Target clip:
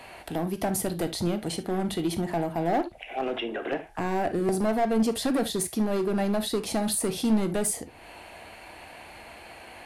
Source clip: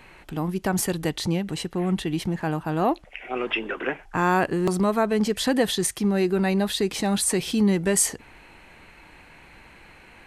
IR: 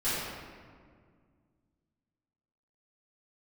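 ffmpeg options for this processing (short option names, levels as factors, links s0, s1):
-filter_complex "[0:a]acrossover=split=370[s0][s1];[s1]acompressor=threshold=0.00891:ratio=2.5[s2];[s0][s2]amix=inputs=2:normalize=0,equalizer=f=160:t=o:w=0.67:g=-5,equalizer=f=630:t=o:w=0.67:g=8,equalizer=f=4000:t=o:w=0.67:g=4,equalizer=f=10000:t=o:w=0.67:g=10,asetrate=45938,aresample=44100,highpass=43,equalizer=f=710:t=o:w=0.37:g=5.5,volume=12.6,asoftclip=hard,volume=0.0794,asplit=2[s3][s4];[1:a]atrim=start_sample=2205,atrim=end_sample=3528[s5];[s4][s5]afir=irnorm=-1:irlink=0,volume=0.2[s6];[s3][s6]amix=inputs=2:normalize=0"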